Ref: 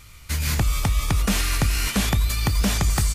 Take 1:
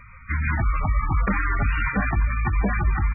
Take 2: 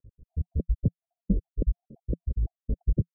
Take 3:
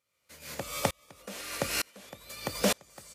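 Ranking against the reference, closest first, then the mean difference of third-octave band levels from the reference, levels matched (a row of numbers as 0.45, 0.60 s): 3, 1, 2; 10.5, 18.0, 28.5 dB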